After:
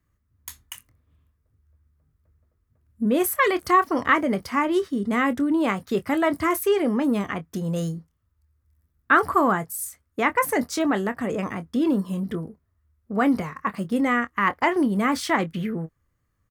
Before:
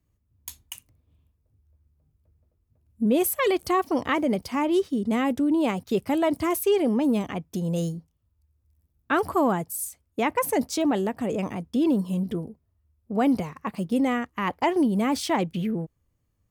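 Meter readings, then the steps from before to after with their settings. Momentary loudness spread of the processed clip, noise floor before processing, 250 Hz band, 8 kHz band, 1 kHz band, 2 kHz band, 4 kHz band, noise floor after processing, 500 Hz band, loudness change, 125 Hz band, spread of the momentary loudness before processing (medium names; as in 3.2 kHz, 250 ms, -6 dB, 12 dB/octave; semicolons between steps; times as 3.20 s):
12 LU, -73 dBFS, +0.5 dB, 0.0 dB, +4.5 dB, +8.0 dB, +0.5 dB, -72 dBFS, +0.5 dB, +2.0 dB, 0.0 dB, 10 LU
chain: high-order bell 1.5 kHz +9 dB 1.1 oct; doubling 25 ms -12.5 dB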